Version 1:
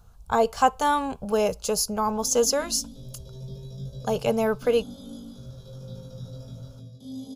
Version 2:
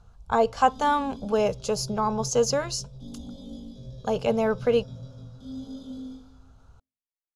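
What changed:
background: entry -1.60 s; master: add distance through air 76 m

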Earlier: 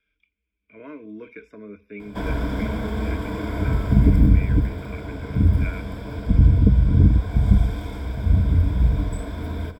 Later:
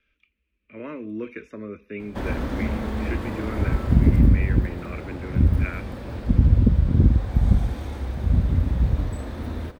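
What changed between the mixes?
speech +6.5 dB; master: remove rippled EQ curve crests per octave 1.7, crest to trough 12 dB

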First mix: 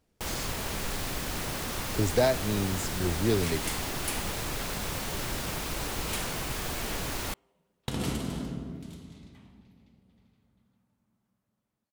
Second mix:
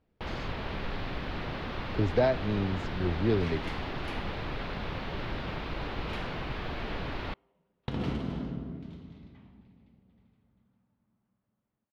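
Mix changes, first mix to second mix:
first sound: add resonant high shelf 5.2 kHz -6.5 dB, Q 1.5; master: add distance through air 290 m

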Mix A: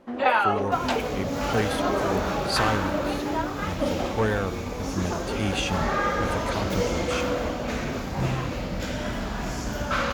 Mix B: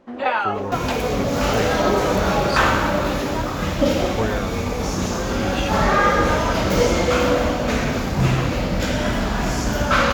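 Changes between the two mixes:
speech: add distance through air 74 m; second sound +8.5 dB

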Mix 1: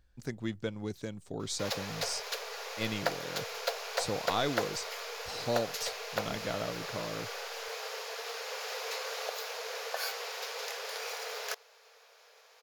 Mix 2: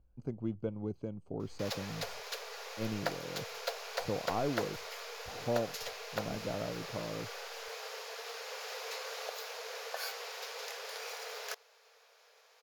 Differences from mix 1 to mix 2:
speech: add boxcar filter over 24 samples; background -4.0 dB

